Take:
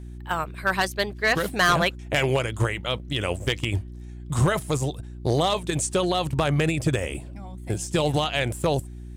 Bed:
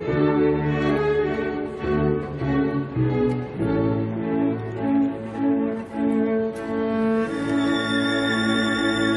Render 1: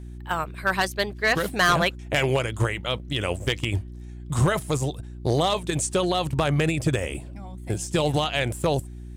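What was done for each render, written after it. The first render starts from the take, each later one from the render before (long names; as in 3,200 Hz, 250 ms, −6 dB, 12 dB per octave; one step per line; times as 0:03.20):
no processing that can be heard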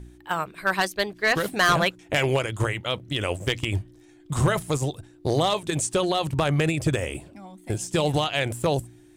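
hum removal 60 Hz, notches 4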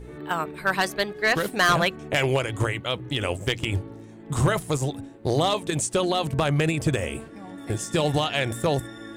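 mix in bed −19 dB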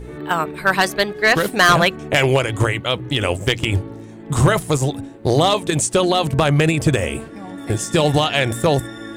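level +7 dB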